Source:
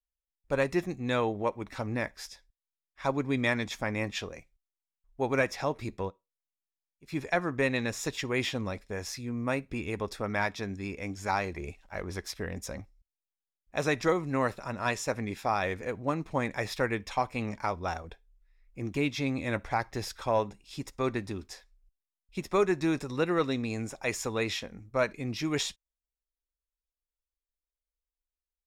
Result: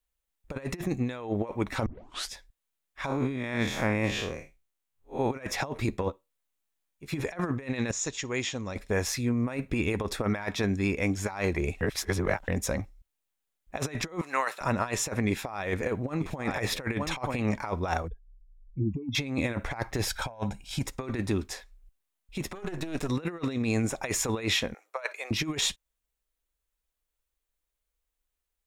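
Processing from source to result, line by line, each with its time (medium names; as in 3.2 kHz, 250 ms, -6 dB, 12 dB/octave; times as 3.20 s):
1.86 s: tape start 0.44 s
3.06–5.31 s: spectral blur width 120 ms
6.00–7.22 s: doubling 14 ms -8 dB
7.91–8.76 s: four-pole ladder low-pass 7.3 kHz, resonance 65%
11.81–12.48 s: reverse
14.21–14.61 s: high-pass 940 Hz
15.28–17.44 s: delay 923 ms -14.5 dB
18.08–19.15 s: spectral contrast enhancement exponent 3.4
20.08–20.85 s: comb 1.3 ms
22.55–23.09 s: partial rectifier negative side -12 dB
24.74–25.31 s: steep high-pass 550 Hz
whole clip: peaking EQ 5.1 kHz -5 dB 0.46 oct; compressor with a negative ratio -34 dBFS, ratio -0.5; trim +5.5 dB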